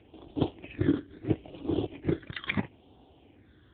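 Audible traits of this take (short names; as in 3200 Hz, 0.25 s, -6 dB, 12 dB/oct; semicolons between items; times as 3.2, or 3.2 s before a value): phasing stages 12, 0.75 Hz, lowest notch 800–1800 Hz; AMR-NB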